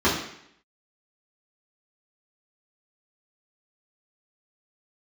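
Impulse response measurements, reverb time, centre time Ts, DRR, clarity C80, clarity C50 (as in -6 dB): 0.70 s, 40 ms, -10.0 dB, 8.0 dB, 5.0 dB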